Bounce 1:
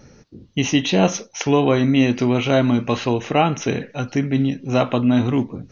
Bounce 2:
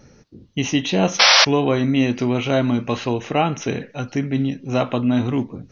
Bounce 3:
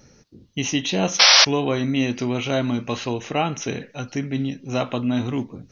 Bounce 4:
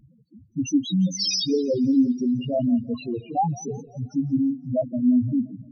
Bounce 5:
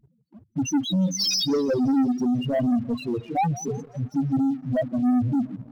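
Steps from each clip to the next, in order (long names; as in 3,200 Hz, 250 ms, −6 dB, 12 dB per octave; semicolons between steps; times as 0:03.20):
sound drawn into the spectrogram noise, 0:01.19–0:01.45, 490–5,900 Hz −10 dBFS; level −2 dB
high-shelf EQ 4,000 Hz +9 dB; level −4 dB
spectral peaks only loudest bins 2; feedback echo with a swinging delay time 173 ms, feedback 49%, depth 107 cents, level −21 dB; level +5 dB
leveller curve on the samples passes 2; level −5 dB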